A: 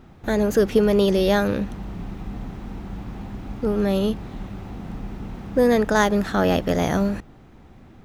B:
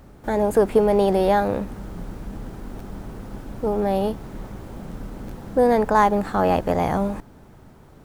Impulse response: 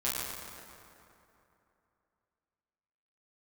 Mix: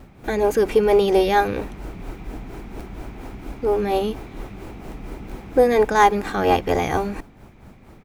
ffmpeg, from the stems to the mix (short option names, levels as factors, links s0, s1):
-filter_complex "[0:a]equalizer=f=2300:w=4.6:g=9.5,volume=0.75[s0];[1:a]tremolo=f=4.3:d=0.91,adelay=2.8,volume=1.41[s1];[s0][s1]amix=inputs=2:normalize=0"